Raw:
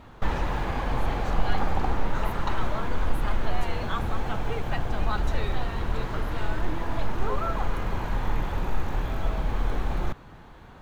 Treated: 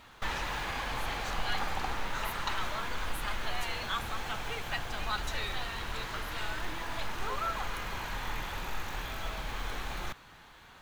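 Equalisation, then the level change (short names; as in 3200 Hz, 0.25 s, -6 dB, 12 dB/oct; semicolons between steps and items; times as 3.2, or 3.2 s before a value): tilt shelf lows -9.5 dB, about 1100 Hz; -3.5 dB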